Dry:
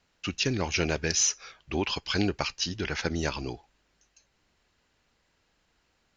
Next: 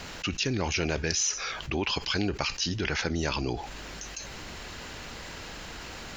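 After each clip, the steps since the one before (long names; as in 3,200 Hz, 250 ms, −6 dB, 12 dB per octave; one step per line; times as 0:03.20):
envelope flattener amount 70%
level −4 dB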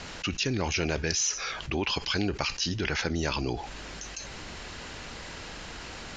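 low-pass filter 8,500 Hz 24 dB per octave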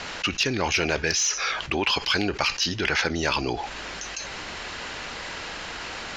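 mid-hump overdrive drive 10 dB, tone 3,900 Hz, clips at −11 dBFS
level +3.5 dB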